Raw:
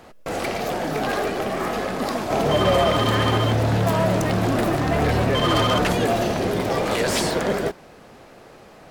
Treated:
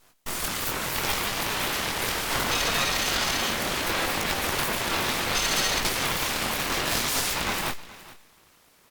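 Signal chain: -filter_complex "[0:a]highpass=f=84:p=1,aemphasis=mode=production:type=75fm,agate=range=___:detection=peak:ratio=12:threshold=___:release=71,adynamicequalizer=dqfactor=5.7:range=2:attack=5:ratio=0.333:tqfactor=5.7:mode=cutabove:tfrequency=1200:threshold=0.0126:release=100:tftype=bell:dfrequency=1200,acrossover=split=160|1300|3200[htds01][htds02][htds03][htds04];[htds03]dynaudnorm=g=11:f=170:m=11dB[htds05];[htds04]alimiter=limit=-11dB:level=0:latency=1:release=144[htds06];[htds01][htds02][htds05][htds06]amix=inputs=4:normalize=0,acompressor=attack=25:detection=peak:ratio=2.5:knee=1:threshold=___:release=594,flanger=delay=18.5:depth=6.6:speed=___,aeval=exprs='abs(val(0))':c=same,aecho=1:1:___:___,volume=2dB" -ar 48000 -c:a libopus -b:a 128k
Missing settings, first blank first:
-9dB, -37dB, -19dB, 0.71, 422, 0.126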